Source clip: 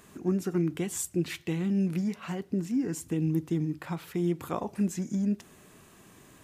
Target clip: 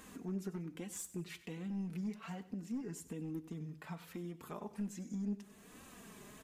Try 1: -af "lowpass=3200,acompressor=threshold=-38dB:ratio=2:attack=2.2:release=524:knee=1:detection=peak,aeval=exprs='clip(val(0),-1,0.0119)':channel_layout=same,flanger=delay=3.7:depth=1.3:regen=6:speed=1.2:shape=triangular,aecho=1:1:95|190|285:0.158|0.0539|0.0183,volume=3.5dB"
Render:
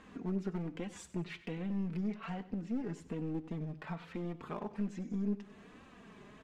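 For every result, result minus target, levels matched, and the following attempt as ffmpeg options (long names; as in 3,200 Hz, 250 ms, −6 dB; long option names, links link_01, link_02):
downward compressor: peak gain reduction −5.5 dB; 4,000 Hz band −2.5 dB
-af "lowpass=3200,acompressor=threshold=-48.5dB:ratio=2:attack=2.2:release=524:knee=1:detection=peak,aeval=exprs='clip(val(0),-1,0.0119)':channel_layout=same,flanger=delay=3.7:depth=1.3:regen=6:speed=1.2:shape=triangular,aecho=1:1:95|190|285:0.158|0.0539|0.0183,volume=3.5dB"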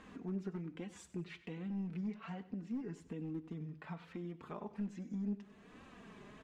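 4,000 Hz band −3.5 dB
-af "acompressor=threshold=-48.5dB:ratio=2:attack=2.2:release=524:knee=1:detection=peak,aeval=exprs='clip(val(0),-1,0.0119)':channel_layout=same,flanger=delay=3.7:depth=1.3:regen=6:speed=1.2:shape=triangular,aecho=1:1:95|190|285:0.158|0.0539|0.0183,volume=3.5dB"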